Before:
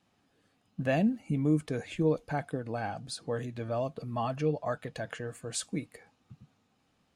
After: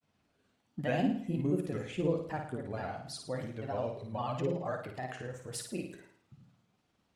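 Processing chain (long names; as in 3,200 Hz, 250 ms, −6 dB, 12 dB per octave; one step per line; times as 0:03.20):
granular cloud, spray 19 ms, pitch spread up and down by 3 semitones
flutter between parallel walls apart 9.3 metres, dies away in 0.57 s
level −3.5 dB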